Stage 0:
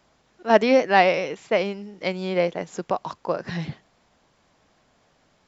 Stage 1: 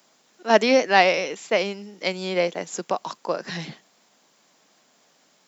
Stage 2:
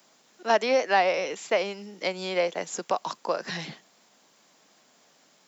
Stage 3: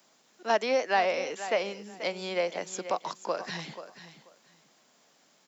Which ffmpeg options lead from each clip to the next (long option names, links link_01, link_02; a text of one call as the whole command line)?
ffmpeg -i in.wav -af "highpass=frequency=180:width=0.5412,highpass=frequency=180:width=1.3066,aemphasis=mode=production:type=75fm" out.wav
ffmpeg -i in.wav -filter_complex "[0:a]acrossover=split=450|1500[link_01][link_02][link_03];[link_01]acompressor=threshold=-38dB:ratio=4[link_04];[link_02]acompressor=threshold=-19dB:ratio=4[link_05];[link_03]acompressor=threshold=-31dB:ratio=4[link_06];[link_04][link_05][link_06]amix=inputs=3:normalize=0" out.wav
ffmpeg -i in.wav -af "aecho=1:1:485|970:0.237|0.0427,volume=-3.5dB" out.wav